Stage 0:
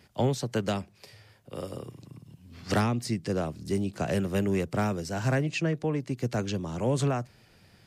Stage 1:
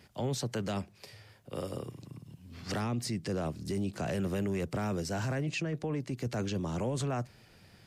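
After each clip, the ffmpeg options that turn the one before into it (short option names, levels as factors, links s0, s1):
-af "alimiter=level_in=1.26:limit=0.0631:level=0:latency=1:release=12,volume=0.794"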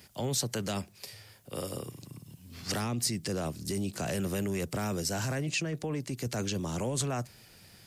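-af "crystalizer=i=2.5:c=0"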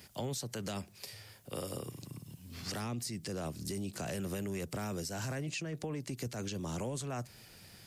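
-af "alimiter=level_in=1.06:limit=0.0631:level=0:latency=1:release=223,volume=0.944,acompressor=threshold=0.0141:ratio=2.5"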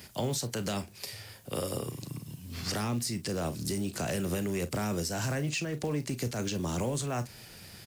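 -af "acrusher=bits=6:mode=log:mix=0:aa=0.000001,aecho=1:1:34|47:0.211|0.141,volume=2"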